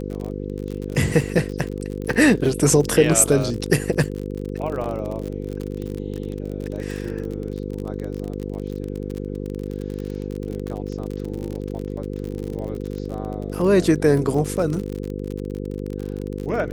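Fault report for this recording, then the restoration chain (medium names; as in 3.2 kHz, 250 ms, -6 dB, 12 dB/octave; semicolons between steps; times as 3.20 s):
buzz 50 Hz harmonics 10 -29 dBFS
crackle 41 per s -27 dBFS
4.84 s: dropout 2.5 ms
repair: de-click; de-hum 50 Hz, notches 10; interpolate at 4.84 s, 2.5 ms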